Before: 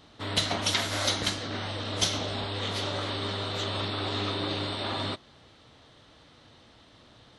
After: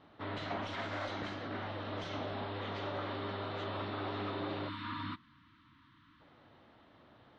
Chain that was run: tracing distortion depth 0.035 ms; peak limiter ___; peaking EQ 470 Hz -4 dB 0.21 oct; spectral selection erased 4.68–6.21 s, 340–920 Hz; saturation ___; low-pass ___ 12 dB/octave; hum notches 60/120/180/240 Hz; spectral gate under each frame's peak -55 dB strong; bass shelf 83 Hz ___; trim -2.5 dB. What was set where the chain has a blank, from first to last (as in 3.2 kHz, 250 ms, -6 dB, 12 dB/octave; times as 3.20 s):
-20.5 dBFS, -25.5 dBFS, 1.9 kHz, -11.5 dB